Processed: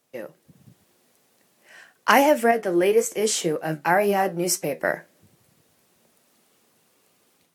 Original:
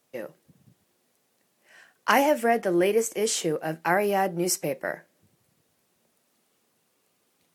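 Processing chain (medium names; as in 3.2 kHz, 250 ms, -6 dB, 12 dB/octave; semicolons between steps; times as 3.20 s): 2.51–4.80 s: flange 1.9 Hz, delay 9.8 ms, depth 4.6 ms, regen +61%; level rider gain up to 7 dB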